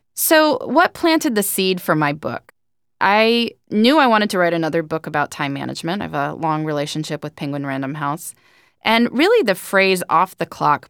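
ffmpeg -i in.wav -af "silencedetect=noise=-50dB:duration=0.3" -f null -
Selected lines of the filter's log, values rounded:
silence_start: 2.50
silence_end: 3.00 | silence_duration: 0.50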